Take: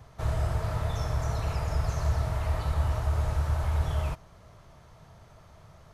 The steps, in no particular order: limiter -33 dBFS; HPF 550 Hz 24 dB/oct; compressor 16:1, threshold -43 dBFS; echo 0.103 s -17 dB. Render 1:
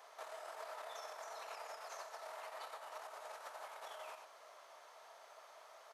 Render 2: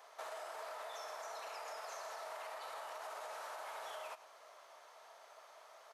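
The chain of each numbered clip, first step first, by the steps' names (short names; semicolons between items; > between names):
echo > limiter > HPF > compressor; HPF > limiter > compressor > echo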